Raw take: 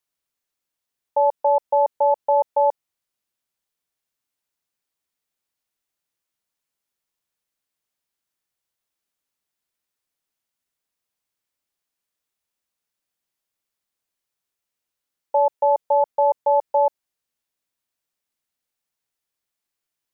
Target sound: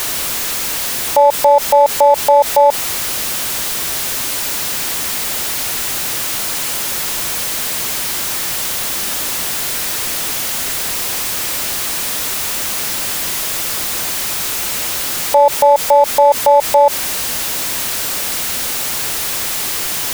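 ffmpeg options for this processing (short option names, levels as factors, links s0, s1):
-af "aeval=exprs='val(0)+0.5*0.0251*sgn(val(0))':c=same,alimiter=level_in=10:limit=0.891:release=50:level=0:latency=1,volume=0.891"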